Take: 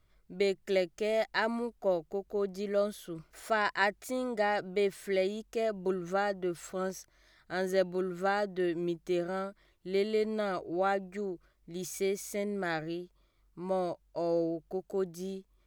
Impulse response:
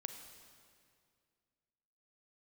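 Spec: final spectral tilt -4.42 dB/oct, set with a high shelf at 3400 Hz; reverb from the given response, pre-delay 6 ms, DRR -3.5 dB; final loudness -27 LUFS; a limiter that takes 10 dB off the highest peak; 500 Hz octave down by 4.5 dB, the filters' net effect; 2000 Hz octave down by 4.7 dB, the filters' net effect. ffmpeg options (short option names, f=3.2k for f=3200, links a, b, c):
-filter_complex "[0:a]equalizer=f=500:t=o:g=-6,equalizer=f=2k:t=o:g=-7.5,highshelf=f=3.4k:g=7,alimiter=level_in=2.5dB:limit=-24dB:level=0:latency=1,volume=-2.5dB,asplit=2[a][b];[1:a]atrim=start_sample=2205,adelay=6[c];[b][c]afir=irnorm=-1:irlink=0,volume=6dB[d];[a][d]amix=inputs=2:normalize=0,volume=5.5dB"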